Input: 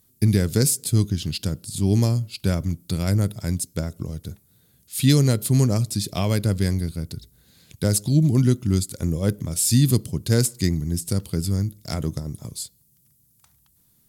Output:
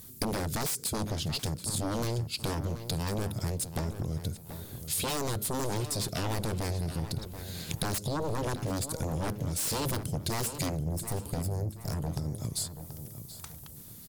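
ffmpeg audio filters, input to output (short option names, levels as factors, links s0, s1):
-filter_complex "[0:a]aeval=exprs='0.596*sin(PI/2*7.08*val(0)/0.596)':c=same,acompressor=threshold=0.0794:ratio=16,asettb=1/sr,asplit=3[s0][s1][s2];[s0]atrim=end=10.784[s3];[s1]atrim=start=10.78:end=12.1,asetpts=PTS-STARTPTS,afade=t=in:d=0.004:c=qsin,afade=t=out:st=1.316:d=0.004:c=qsin,equalizer=f=3400:t=o:w=2.2:g=-12.5[s4];[s2]atrim=start=12.096[s5];[s3][s4]acrossfade=d=0.004:c1=hsin:c2=qsin[s6];[s6][s5]acrossfade=d=0.004:c1=qsin:c2=hsin,asplit=2[s7][s8];[s8]adelay=731,lowpass=f=4200:p=1,volume=0.299,asplit=2[s9][s10];[s10]adelay=731,lowpass=f=4200:p=1,volume=0.37,asplit=2[s11][s12];[s12]adelay=731,lowpass=f=4200:p=1,volume=0.37,asplit=2[s13][s14];[s14]adelay=731,lowpass=f=4200:p=1,volume=0.37[s15];[s7][s9][s11][s13][s15]amix=inputs=5:normalize=0,volume=0.398"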